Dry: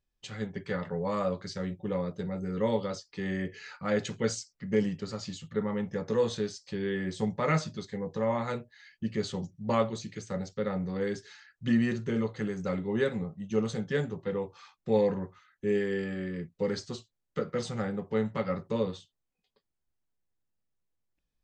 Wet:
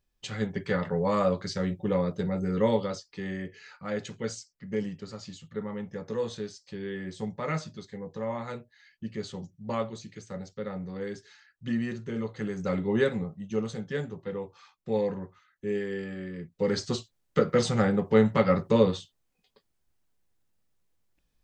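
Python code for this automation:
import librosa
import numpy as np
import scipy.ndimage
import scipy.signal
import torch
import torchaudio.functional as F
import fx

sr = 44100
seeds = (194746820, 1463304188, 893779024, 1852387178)

y = fx.gain(x, sr, db=fx.line((2.54, 5.0), (3.53, -4.0), (12.09, -4.0), (12.88, 4.5), (13.72, -2.5), (16.38, -2.5), (16.91, 8.5)))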